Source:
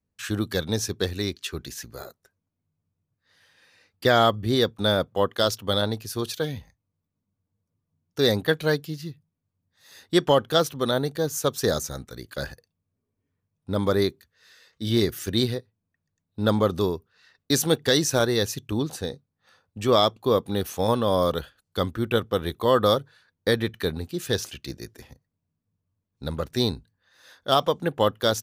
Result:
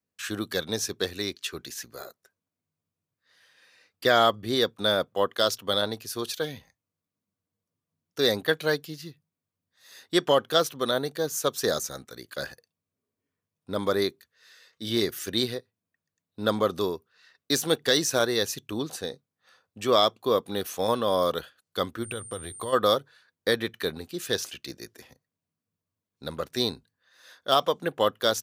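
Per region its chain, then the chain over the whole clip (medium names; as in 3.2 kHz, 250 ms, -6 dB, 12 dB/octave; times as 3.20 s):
22.02–22.72 s: peaking EQ 93 Hz +14 dB 0.86 oct + compression 5:1, threshold -27 dBFS + whistle 8.9 kHz -41 dBFS
whole clip: de-esser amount 40%; high-pass 390 Hz 6 dB/octave; band-stop 860 Hz, Q 12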